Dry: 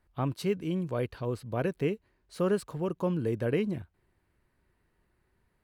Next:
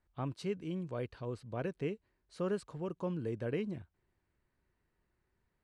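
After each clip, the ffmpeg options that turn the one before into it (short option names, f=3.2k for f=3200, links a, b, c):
-af "lowpass=f=9k:w=0.5412,lowpass=f=9k:w=1.3066,volume=-7.5dB"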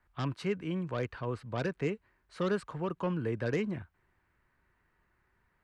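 -filter_complex "[0:a]lowshelf=f=490:g=5,acrossover=split=210|1000|2200[a][b][c][d];[c]aeval=exprs='0.015*sin(PI/2*3.55*val(0)/0.015)':c=same[e];[a][b][e][d]amix=inputs=4:normalize=0"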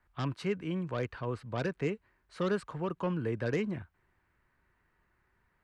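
-af anull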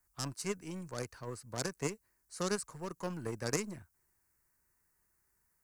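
-af "aeval=exprs='0.112*(cos(1*acos(clip(val(0)/0.112,-1,1)))-cos(1*PI/2))+0.0251*(cos(3*acos(clip(val(0)/0.112,-1,1)))-cos(3*PI/2))+0.00316*(cos(6*acos(clip(val(0)/0.112,-1,1)))-cos(6*PI/2))':c=same,aexciter=amount=16:drive=4.2:freq=5.1k"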